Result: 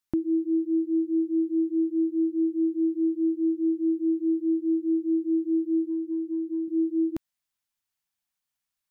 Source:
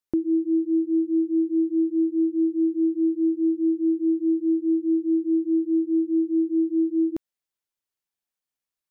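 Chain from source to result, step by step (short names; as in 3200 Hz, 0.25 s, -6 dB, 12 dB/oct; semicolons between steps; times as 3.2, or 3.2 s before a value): 5.83–6.68 compressor, threshold -24 dBFS, peak gain reduction 5.5 dB; bell 430 Hz -12.5 dB 0.8 oct; gain +3.5 dB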